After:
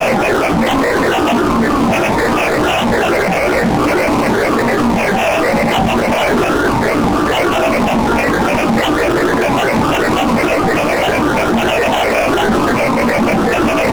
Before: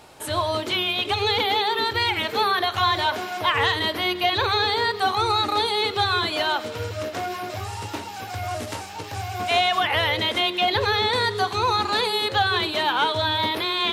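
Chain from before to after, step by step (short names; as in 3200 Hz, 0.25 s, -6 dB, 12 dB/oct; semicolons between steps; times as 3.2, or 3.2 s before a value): infinite clipping; spectral gate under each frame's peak -15 dB weak; bell 9100 Hz +13.5 dB 0.42 oct; sample-rate reducer 2400 Hz, jitter 0%; small resonant body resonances 380/1500 Hz, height 17 dB, ringing for 35 ms; grains, pitch spread up and down by 12 st; doubler 17 ms -7 dB; reverb RT60 0.50 s, pre-delay 7 ms, DRR 8.5 dB; maximiser +21.5 dB; Doppler distortion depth 0.28 ms; gain -4.5 dB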